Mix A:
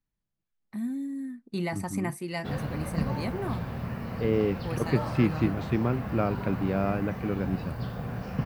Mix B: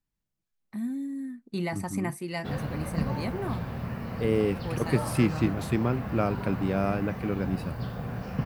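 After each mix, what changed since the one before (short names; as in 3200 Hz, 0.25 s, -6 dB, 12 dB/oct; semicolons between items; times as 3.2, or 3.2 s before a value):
second voice: remove air absorption 160 m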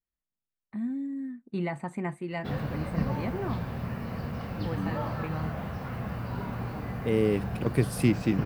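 first voice: add running mean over 8 samples; second voice: entry +2.85 s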